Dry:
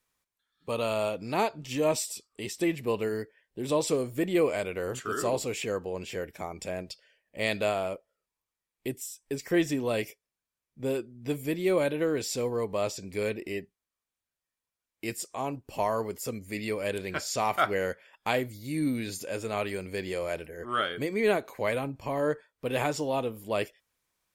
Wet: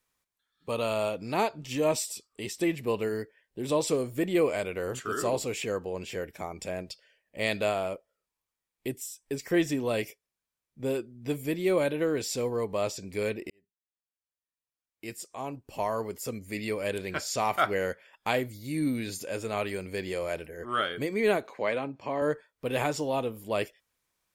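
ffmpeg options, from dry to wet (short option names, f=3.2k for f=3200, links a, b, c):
-filter_complex "[0:a]asettb=1/sr,asplit=3[a][b][c];[a]atrim=end=21.474[d];[b]atrim=start=21.47:end=22.22,asetpts=PTS-STARTPTS,afade=t=in:d=0.004:c=qsin,afade=t=out:st=0.746:d=0.004:c=qsin,highpass=190,lowpass=4.9k[e];[c]atrim=start=22.216[f];[d][e]acrossfade=d=0.004:c1=hsin:c2=qsin[g];[g][f]acrossfade=d=0.004:c1=qsin:c2=hsin,asplit=2[h][i];[h]atrim=end=13.5,asetpts=PTS-STARTPTS,afade=t=out:st=13.496:d=0.004:c=hsin[j];[i]atrim=start=13.5,asetpts=PTS-STARTPTS,afade=t=in:d=2.98[k];[j][k]concat=n=2:v=0:a=1"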